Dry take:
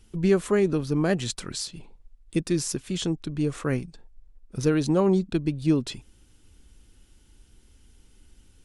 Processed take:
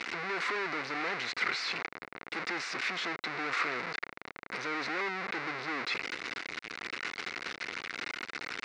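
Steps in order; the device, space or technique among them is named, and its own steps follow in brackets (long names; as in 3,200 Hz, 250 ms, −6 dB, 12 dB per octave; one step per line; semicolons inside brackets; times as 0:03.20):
home computer beeper (sign of each sample alone; loudspeaker in its box 590–4,100 Hz, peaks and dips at 600 Hz −9 dB, 870 Hz −5 dB, 1,400 Hz +3 dB, 2,100 Hz +8 dB, 3,200 Hz −10 dB)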